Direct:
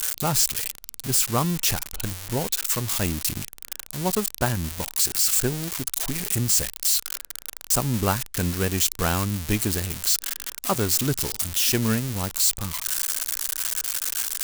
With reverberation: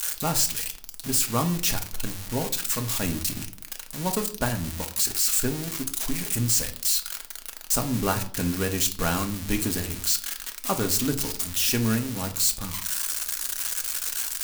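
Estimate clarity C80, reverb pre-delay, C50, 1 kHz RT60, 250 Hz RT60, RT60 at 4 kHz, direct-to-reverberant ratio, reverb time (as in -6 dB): 18.0 dB, 3 ms, 13.5 dB, 0.50 s, 0.80 s, 0.35 s, 4.0 dB, 0.55 s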